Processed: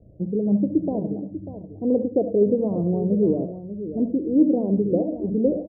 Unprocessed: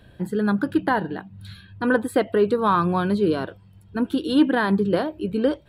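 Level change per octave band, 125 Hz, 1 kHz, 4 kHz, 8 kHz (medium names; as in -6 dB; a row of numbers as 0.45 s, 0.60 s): +1.0 dB, -16.0 dB, under -40 dB, under -30 dB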